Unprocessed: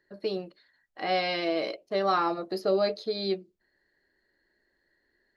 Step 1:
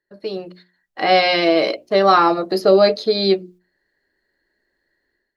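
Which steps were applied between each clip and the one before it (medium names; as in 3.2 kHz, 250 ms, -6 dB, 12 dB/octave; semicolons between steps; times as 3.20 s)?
gate -56 dBFS, range -11 dB; hum notches 60/120/180/240/300/360 Hz; level rider gain up to 11.5 dB; trim +2 dB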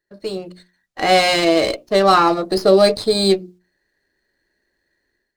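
tone controls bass +3 dB, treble +6 dB; sliding maximum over 3 samples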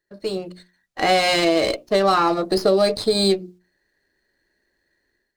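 compression 4:1, threshold -14 dBFS, peak gain reduction 6 dB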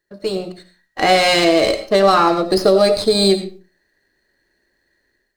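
reverberation RT60 0.35 s, pre-delay 45 ms, DRR 10 dB; trim +4 dB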